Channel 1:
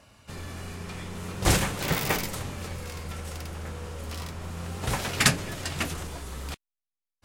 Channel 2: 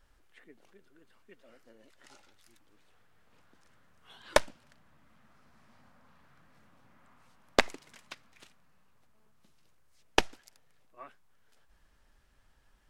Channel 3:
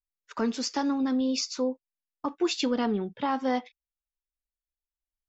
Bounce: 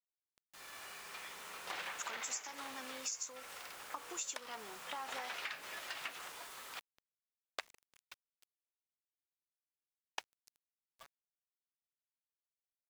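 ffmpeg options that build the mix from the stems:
-filter_complex "[0:a]acrossover=split=4100[a][b];[b]acompressor=threshold=-50dB:ratio=4:attack=1:release=60[c];[a][c]amix=inputs=2:normalize=0,alimiter=limit=-18.5dB:level=0:latency=1:release=172,dynaudnorm=f=100:g=7:m=12dB,adelay=250,volume=-16.5dB[d];[1:a]volume=-10dB[e];[2:a]acompressor=threshold=-37dB:ratio=5,aexciter=amount=11.8:drive=8.6:freq=7.1k,aeval=exprs='val(0)+0.00251*(sin(2*PI*60*n/s)+sin(2*PI*2*60*n/s)/2+sin(2*PI*3*60*n/s)/3+sin(2*PI*4*60*n/s)/4+sin(2*PI*5*60*n/s)/5)':c=same,adelay=1700,volume=3dB[f];[d][e][f]amix=inputs=3:normalize=0,highpass=910,acrusher=bits=8:mix=0:aa=0.000001,acompressor=threshold=-39dB:ratio=6"

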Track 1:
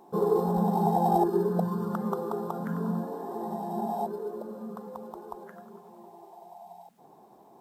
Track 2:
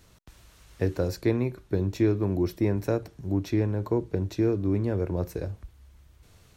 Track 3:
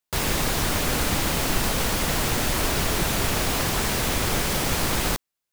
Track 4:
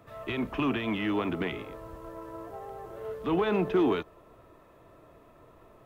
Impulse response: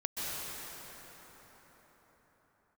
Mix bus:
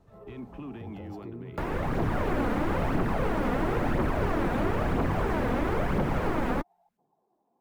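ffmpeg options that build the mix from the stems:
-filter_complex "[0:a]acompressor=threshold=-32dB:ratio=2.5,volume=-19dB[a];[1:a]alimiter=limit=-20.5dB:level=0:latency=1,volume=-13dB[b];[2:a]acrossover=split=140|450|2200[c][d][e][f];[c]acompressor=threshold=-38dB:ratio=4[g];[d]acompressor=threshold=-34dB:ratio=4[h];[e]acompressor=threshold=-35dB:ratio=4[i];[f]acompressor=threshold=-59dB:ratio=4[j];[g][h][i][j]amix=inputs=4:normalize=0,dynaudnorm=f=240:g=5:m=8dB,adelay=1450,volume=1.5dB[k];[3:a]volume=-13dB[l];[a][k]amix=inputs=2:normalize=0,aphaser=in_gain=1:out_gain=1:delay=4.3:decay=0.44:speed=1:type=triangular,acompressor=threshold=-25dB:ratio=2.5,volume=0dB[m];[b][l]amix=inputs=2:normalize=0,lowshelf=f=340:g=9.5,alimiter=level_in=8dB:limit=-24dB:level=0:latency=1:release=72,volume=-8dB,volume=0dB[n];[m][n]amix=inputs=2:normalize=0,highshelf=f=2.1k:g=-8.5"

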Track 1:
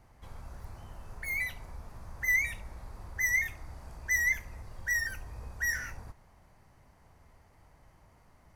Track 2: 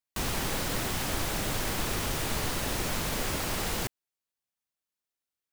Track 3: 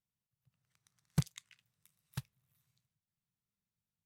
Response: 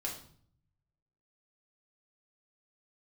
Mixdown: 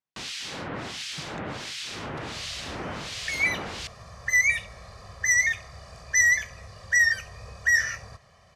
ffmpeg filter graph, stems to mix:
-filter_complex "[0:a]aecho=1:1:1.7:0.85,adelay=2050,volume=2.5dB[a];[1:a]acrossover=split=2000[b][c];[b]aeval=exprs='val(0)*(1-1/2+1/2*cos(2*PI*1.4*n/s))':c=same[d];[c]aeval=exprs='val(0)*(1-1/2-1/2*cos(2*PI*1.4*n/s))':c=same[e];[d][e]amix=inputs=2:normalize=0,aemphasis=mode=reproduction:type=cd,volume=-0.5dB,asplit=2[f][g];[g]volume=-20dB[h];[2:a]volume=-10.5dB[i];[3:a]atrim=start_sample=2205[j];[h][j]afir=irnorm=-1:irlink=0[k];[a][f][i][k]amix=inputs=4:normalize=0,highpass=100,lowpass=7.2k,equalizer=f=4.6k:w=0.5:g=9"

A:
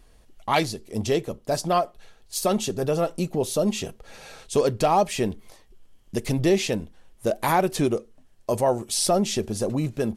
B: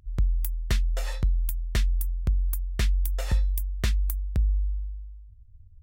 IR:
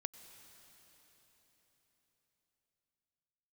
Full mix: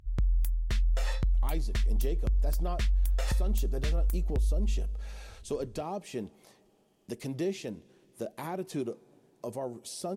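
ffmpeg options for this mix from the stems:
-filter_complex "[0:a]highpass=f=270:p=1,acrossover=split=400[a][b];[b]acompressor=threshold=-42dB:ratio=2[c];[a][c]amix=inputs=2:normalize=0,adelay=950,volume=-8dB,asplit=2[d][e];[e]volume=-11.5dB[f];[1:a]highshelf=f=11k:g=-10.5,volume=0.5dB[g];[2:a]atrim=start_sample=2205[h];[f][h]afir=irnorm=-1:irlink=0[i];[d][g][i]amix=inputs=3:normalize=0,alimiter=limit=-21dB:level=0:latency=1:release=39"

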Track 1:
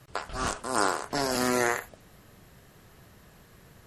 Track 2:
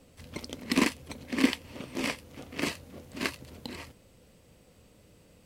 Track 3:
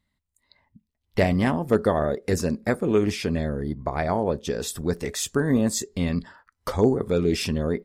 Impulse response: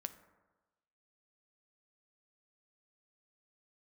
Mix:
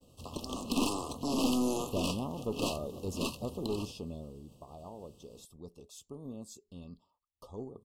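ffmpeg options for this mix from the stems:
-filter_complex "[0:a]equalizer=f=260:t=o:w=0.77:g=10,dynaudnorm=f=250:g=7:m=11dB,adelay=100,volume=-12dB[a];[1:a]agate=range=-33dB:threshold=-54dB:ratio=3:detection=peak,volume=1.5dB[b];[2:a]adelay=750,volume=-13dB,afade=t=out:st=3.86:d=0.65:silence=0.354813[c];[a][b][c]amix=inputs=3:normalize=0,aeval=exprs='(tanh(15.8*val(0)+0.35)-tanh(0.35))/15.8':c=same,asuperstop=centerf=1800:order=20:qfactor=1.3"

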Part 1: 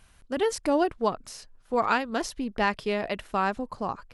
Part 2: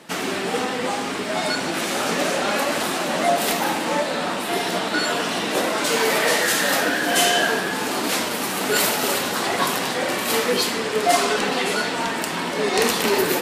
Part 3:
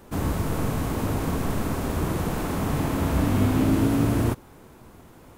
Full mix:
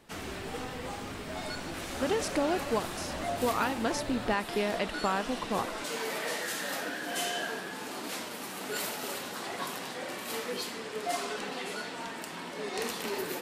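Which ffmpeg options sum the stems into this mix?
-filter_complex "[0:a]acompressor=threshold=-26dB:ratio=6,adelay=1700,volume=0.5dB[a];[1:a]volume=-15dB[b];[2:a]asoftclip=type=tanh:threshold=-25dB,volume=-15.5dB[c];[a][b][c]amix=inputs=3:normalize=0"

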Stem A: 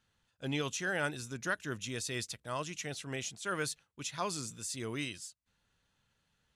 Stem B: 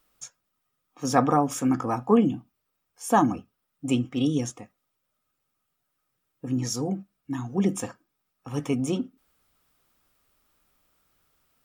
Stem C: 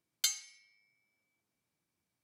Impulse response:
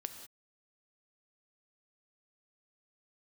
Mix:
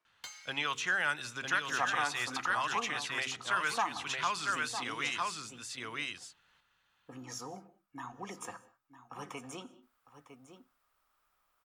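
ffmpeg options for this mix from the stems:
-filter_complex "[0:a]equalizer=f=2.9k:t=o:w=2.1:g=11,bandreject=f=66.33:t=h:w=4,bandreject=f=132.66:t=h:w=4,bandreject=f=198.99:t=h:w=4,bandreject=f=265.32:t=h:w=4,bandreject=f=331.65:t=h:w=4,bandreject=f=397.98:t=h:w=4,bandreject=f=464.31:t=h:w=4,adelay=50,volume=-5dB,asplit=3[a][b][c];[b]volume=-15dB[d];[c]volume=-3.5dB[e];[1:a]equalizer=f=200:w=0.54:g=-8,bandreject=f=60:t=h:w=6,bandreject=f=120:t=h:w=6,adelay=650,volume=-13.5dB,asplit=3[f][g][h];[g]volume=-5.5dB[i];[h]volume=-12dB[j];[2:a]acompressor=threshold=-36dB:ratio=6,asplit=2[k][l];[l]highpass=f=720:p=1,volume=20dB,asoftclip=type=tanh:threshold=-20dB[m];[k][m]amix=inputs=2:normalize=0,lowpass=f=3.3k:p=1,volume=-6dB,acrusher=bits=5:mode=log:mix=0:aa=0.000001,volume=-12.5dB[n];[3:a]atrim=start_sample=2205[o];[d][i]amix=inputs=2:normalize=0[p];[p][o]afir=irnorm=-1:irlink=0[q];[e][j]amix=inputs=2:normalize=0,aecho=0:1:954:1[r];[a][f][n][q][r]amix=inputs=5:normalize=0,equalizer=f=1.1k:t=o:w=1.7:g=11.5,acrossover=split=310|800|1900|4000[s][t][u][v][w];[s]acompressor=threshold=-50dB:ratio=4[x];[t]acompressor=threshold=-49dB:ratio=4[y];[u]acompressor=threshold=-31dB:ratio=4[z];[v]acompressor=threshold=-41dB:ratio=4[aa];[w]acompressor=threshold=-42dB:ratio=4[ab];[x][y][z][aa][ab]amix=inputs=5:normalize=0"

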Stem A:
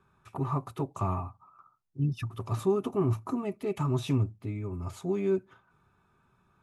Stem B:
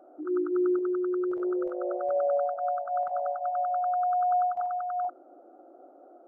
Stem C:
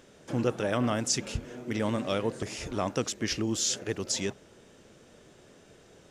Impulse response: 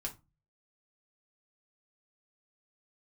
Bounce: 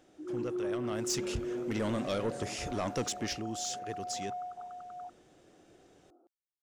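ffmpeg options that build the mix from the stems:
-filter_complex "[1:a]lowpass=1k,equalizer=f=600:t=o:w=0.64:g=-13.5,volume=-5.5dB[a];[2:a]afade=t=in:st=0.84:d=0.49:silence=0.316228,afade=t=out:st=3.13:d=0.29:silence=0.398107[b];[a][b]amix=inputs=2:normalize=0,asoftclip=type=tanh:threshold=-25.5dB"

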